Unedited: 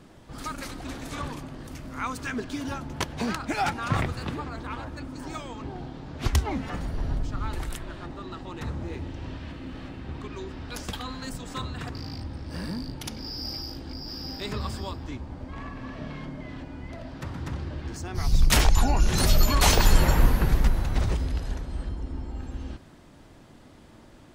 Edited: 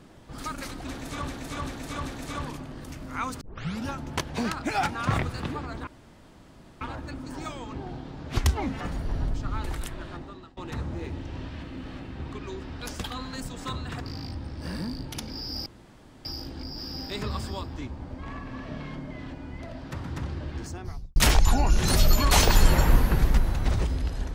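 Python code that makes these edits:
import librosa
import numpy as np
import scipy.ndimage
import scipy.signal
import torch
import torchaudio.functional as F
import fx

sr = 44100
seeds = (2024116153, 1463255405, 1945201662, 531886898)

y = fx.studio_fade_out(x, sr, start_s=17.89, length_s=0.57)
y = fx.edit(y, sr, fx.repeat(start_s=0.89, length_s=0.39, count=4),
    fx.tape_start(start_s=2.24, length_s=0.46),
    fx.insert_room_tone(at_s=4.7, length_s=0.94),
    fx.fade_out_to(start_s=8.02, length_s=0.44, floor_db=-23.0),
    fx.insert_room_tone(at_s=13.55, length_s=0.59), tone=tone)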